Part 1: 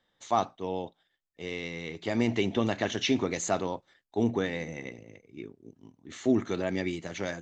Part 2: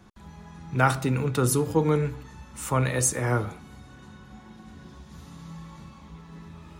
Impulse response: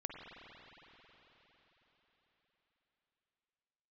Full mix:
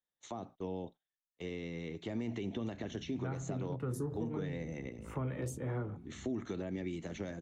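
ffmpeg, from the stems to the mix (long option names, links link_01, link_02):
-filter_complex "[0:a]bandreject=frequency=4800:width=7.4,alimiter=limit=-22dB:level=0:latency=1:release=143,volume=-1dB,asplit=2[link_01][link_02];[1:a]afwtdn=0.0141,highshelf=frequency=5100:gain=-6,flanger=delay=4.9:depth=8.2:regen=-55:speed=0.89:shape=triangular,adelay=2450,volume=-0.5dB[link_03];[link_02]apad=whole_len=407541[link_04];[link_03][link_04]sidechaincompress=threshold=-35dB:ratio=8:attack=22:release=445[link_05];[link_01][link_05]amix=inputs=2:normalize=0,agate=range=-23dB:threshold=-48dB:ratio=16:detection=peak,acrossover=split=250|500[link_06][link_07][link_08];[link_06]acompressor=threshold=-38dB:ratio=4[link_09];[link_07]acompressor=threshold=-42dB:ratio=4[link_10];[link_08]acompressor=threshold=-50dB:ratio=4[link_11];[link_09][link_10][link_11]amix=inputs=3:normalize=0"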